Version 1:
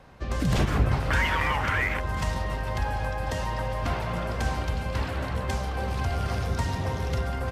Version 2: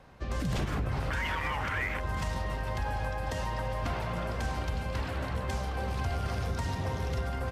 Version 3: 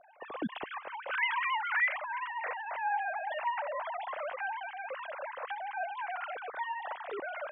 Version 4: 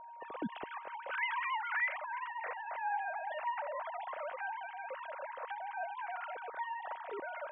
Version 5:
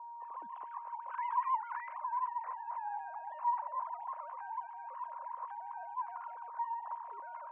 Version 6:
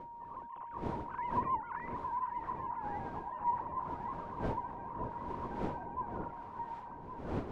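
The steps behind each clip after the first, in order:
peak limiter -19.5 dBFS, peak gain reduction 9 dB; trim -3.5 dB
formants replaced by sine waves; trim -4 dB
whistle 940 Hz -44 dBFS; distance through air 210 m; trim -3 dB
band-pass filter 1 kHz, Q 12; trim +8.5 dB
fade out at the end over 1.37 s; wind noise 440 Hz -44 dBFS; echo whose repeats swap between lows and highs 560 ms, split 830 Hz, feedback 72%, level -6 dB; trim -1.5 dB

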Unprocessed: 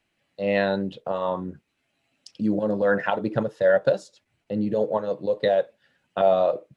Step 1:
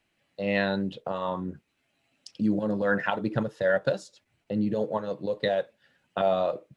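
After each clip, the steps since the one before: dynamic bell 560 Hz, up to -6 dB, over -33 dBFS, Q 0.95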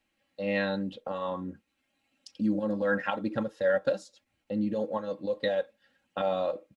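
comb 3.7 ms, depth 62%; trim -4.5 dB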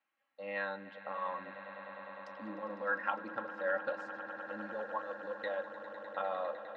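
band-pass filter 1.2 kHz, Q 1.8; echo with a slow build-up 101 ms, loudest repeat 8, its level -16 dB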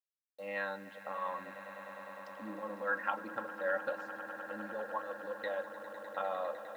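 bit crusher 11-bit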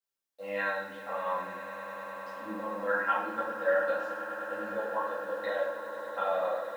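plate-style reverb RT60 0.71 s, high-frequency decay 0.9×, DRR -9.5 dB; trim -4 dB

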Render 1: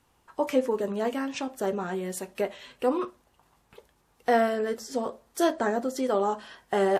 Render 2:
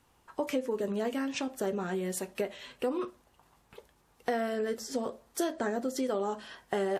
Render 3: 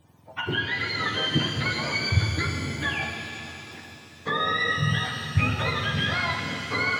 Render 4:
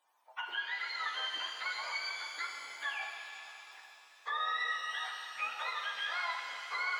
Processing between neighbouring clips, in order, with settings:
dynamic bell 940 Hz, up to -5 dB, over -40 dBFS, Q 1.1; compression 6:1, threshold -27 dBFS, peak gain reduction 8.5 dB
spectrum inverted on a logarithmic axis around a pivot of 920 Hz; pitch-shifted reverb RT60 3.2 s, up +7 st, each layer -8 dB, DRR 2 dB; trim +6.5 dB
ladder high-pass 720 Hz, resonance 35%; trim -3.5 dB

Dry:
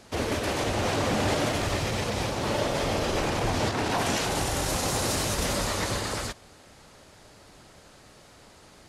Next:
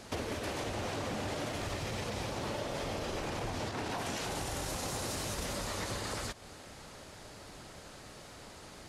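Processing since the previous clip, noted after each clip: compression 6:1, threshold -37 dBFS, peak gain reduction 14 dB; trim +2 dB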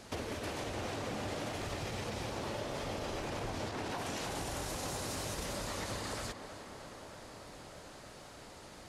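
tape echo 308 ms, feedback 88%, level -10 dB, low-pass 3 kHz; trim -2.5 dB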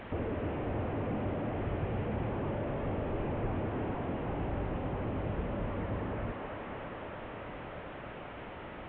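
one-bit delta coder 16 kbps, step -55.5 dBFS; trim +8 dB

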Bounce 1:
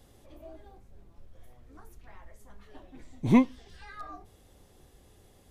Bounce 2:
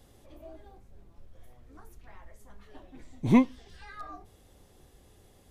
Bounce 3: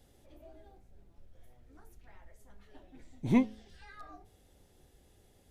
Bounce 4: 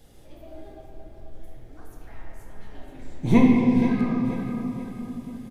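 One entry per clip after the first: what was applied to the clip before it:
no audible change
peaking EQ 1.1 kHz -9 dB 0.23 oct; de-hum 107.6 Hz, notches 7; trim -5 dB
feedback delay 482 ms, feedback 42%, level -10 dB; simulated room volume 200 m³, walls hard, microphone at 0.64 m; trim +7.5 dB

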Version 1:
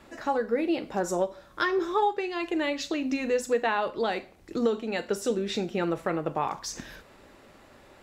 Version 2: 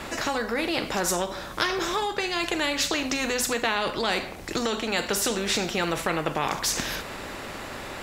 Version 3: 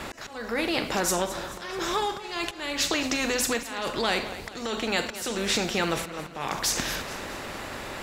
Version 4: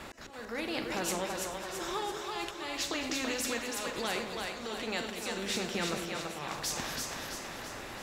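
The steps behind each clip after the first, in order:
in parallel at +2 dB: peak limiter -22 dBFS, peak gain reduction 8 dB; on the sum: spectrum-flattening compressor 2:1
crackle 50 per s -48 dBFS; slow attack 318 ms; modulated delay 217 ms, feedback 54%, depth 66 cents, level -14.5 dB
two-band feedback delay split 450 Hz, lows 183 ms, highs 333 ms, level -3.5 dB; trim -9 dB

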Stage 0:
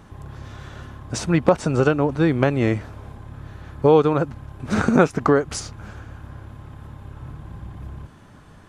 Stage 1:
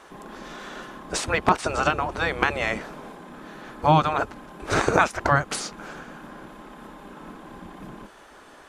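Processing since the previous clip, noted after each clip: spectral gate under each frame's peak -10 dB weak; trim +5 dB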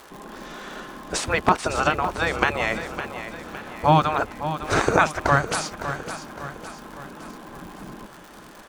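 crackle 150 per s -35 dBFS; on a send: feedback delay 559 ms, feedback 49%, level -11 dB; on the sum: trim +1 dB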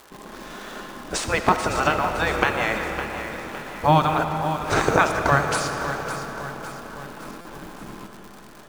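in parallel at -5.5 dB: word length cut 6-bit, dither none; on the sum: algorithmic reverb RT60 4.2 s, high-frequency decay 0.65×, pre-delay 30 ms, DRR 5.5 dB; buffer glitch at 7.41 s, samples 256, times 6; trim -4 dB

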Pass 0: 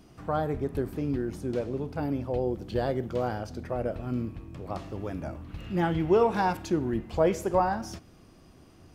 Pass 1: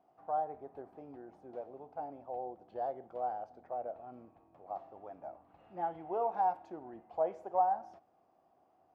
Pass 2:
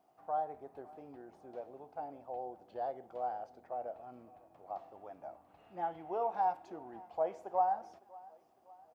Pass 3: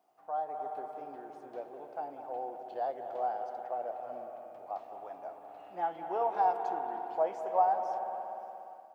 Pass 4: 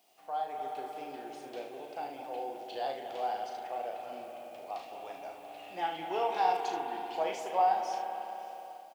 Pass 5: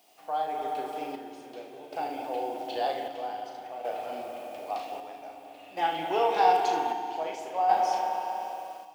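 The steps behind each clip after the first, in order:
band-pass filter 750 Hz, Q 5.4
treble shelf 2.4 kHz +10 dB; feedback delay 556 ms, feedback 50%, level -22 dB; trim -2 dB
reverberation RT60 3.4 s, pre-delay 194 ms, DRR 5 dB; level rider gain up to 5 dB; high-pass 430 Hz 6 dB/octave
resonant high shelf 1.9 kHz +12 dB, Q 1.5; on a send: early reflections 37 ms -6 dB, 75 ms -9 dB; on the sum: dynamic bell 610 Hz, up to -5 dB, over -46 dBFS, Q 2.9; trim +2 dB
square tremolo 0.52 Hz, depth 60%, duty 60%; FDN reverb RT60 2.6 s, low-frequency decay 1.5×, high-frequency decay 0.95×, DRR 8 dB; trim +6 dB

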